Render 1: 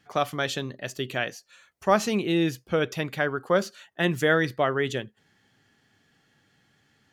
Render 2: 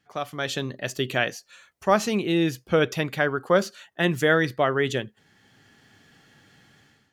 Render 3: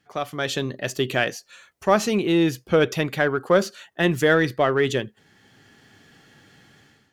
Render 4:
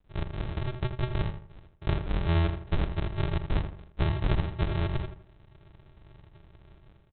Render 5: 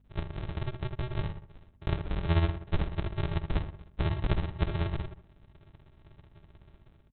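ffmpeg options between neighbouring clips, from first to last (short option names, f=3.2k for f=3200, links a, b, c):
-af "dynaudnorm=f=310:g=3:m=15.5dB,volume=-6.5dB"
-filter_complex "[0:a]equalizer=f=380:w=1.7:g=2.5,asplit=2[a][b];[b]asoftclip=type=tanh:threshold=-23dB,volume=-8.5dB[c];[a][c]amix=inputs=2:normalize=0"
-filter_complex "[0:a]acompressor=threshold=-30dB:ratio=2,aresample=8000,acrusher=samples=32:mix=1:aa=0.000001,aresample=44100,asplit=2[a][b];[b]adelay=81,lowpass=f=2.2k:p=1,volume=-8dB,asplit=2[c][d];[d]adelay=81,lowpass=f=2.2k:p=1,volume=0.36,asplit=2[e][f];[f]adelay=81,lowpass=f=2.2k:p=1,volume=0.36,asplit=2[g][h];[h]adelay=81,lowpass=f=2.2k:p=1,volume=0.36[i];[a][c][e][g][i]amix=inputs=5:normalize=0"
-filter_complex "[0:a]tremolo=f=16:d=0.62,aeval=exprs='val(0)+0.000794*(sin(2*PI*50*n/s)+sin(2*PI*2*50*n/s)/2+sin(2*PI*3*50*n/s)/3+sin(2*PI*4*50*n/s)/4+sin(2*PI*5*50*n/s)/5)':c=same,asplit=2[a][b];[b]adelay=12,volume=-14dB[c];[a][c]amix=inputs=2:normalize=0"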